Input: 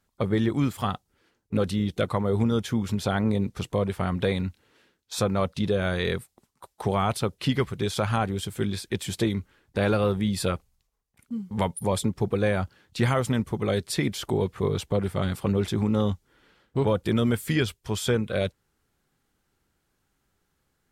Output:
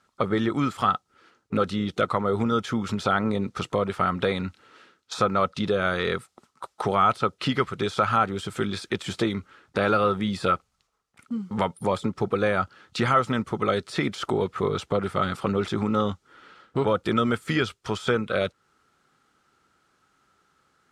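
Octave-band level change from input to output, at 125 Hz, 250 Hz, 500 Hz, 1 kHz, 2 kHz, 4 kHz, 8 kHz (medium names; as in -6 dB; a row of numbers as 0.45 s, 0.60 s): -4.5 dB, -0.5 dB, +1.0 dB, +7.0 dB, +4.0 dB, +0.5 dB, -6.5 dB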